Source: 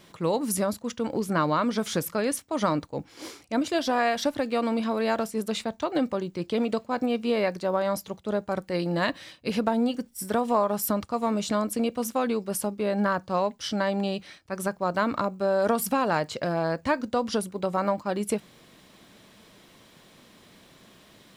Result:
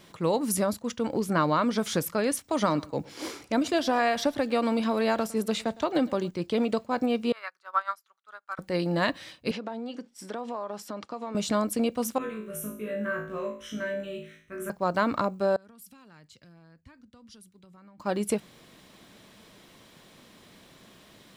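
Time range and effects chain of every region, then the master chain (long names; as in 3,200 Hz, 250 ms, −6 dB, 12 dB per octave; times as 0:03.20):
0:02.44–0:06.31: repeating echo 108 ms, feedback 22%, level −22 dB + multiband upward and downward compressor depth 40%
0:07.32–0:08.59: high-pass with resonance 1,300 Hz + expander for the loud parts 2.5 to 1, over −37 dBFS
0:09.51–0:11.35: downward compressor, threshold −30 dBFS + three-way crossover with the lows and the highs turned down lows −24 dB, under 200 Hz, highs −23 dB, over 6,800 Hz
0:12.18–0:14.70: phaser with its sweep stopped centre 2,000 Hz, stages 4 + tuned comb filter 54 Hz, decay 0.19 s, harmonics odd, mix 80% + flutter between parallel walls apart 3.2 metres, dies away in 0.48 s
0:15.56–0:18.00: guitar amp tone stack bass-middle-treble 6-0-2 + downward compressor, threshold −48 dBFS + multiband upward and downward expander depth 70%
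whole clip: no processing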